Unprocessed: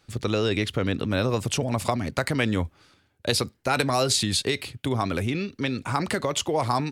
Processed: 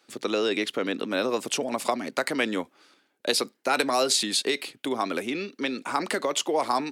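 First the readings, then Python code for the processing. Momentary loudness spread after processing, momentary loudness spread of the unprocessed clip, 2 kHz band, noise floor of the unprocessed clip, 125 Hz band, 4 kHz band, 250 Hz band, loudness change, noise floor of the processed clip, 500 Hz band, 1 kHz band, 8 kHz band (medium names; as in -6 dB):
8 LU, 7 LU, 0.0 dB, -65 dBFS, -19.5 dB, 0.0 dB, -3.0 dB, -1.0 dB, -70 dBFS, 0.0 dB, 0.0 dB, 0.0 dB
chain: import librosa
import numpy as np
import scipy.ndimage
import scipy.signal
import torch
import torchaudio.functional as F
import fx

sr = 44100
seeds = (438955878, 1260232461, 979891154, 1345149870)

y = scipy.signal.sosfilt(scipy.signal.butter(4, 250.0, 'highpass', fs=sr, output='sos'), x)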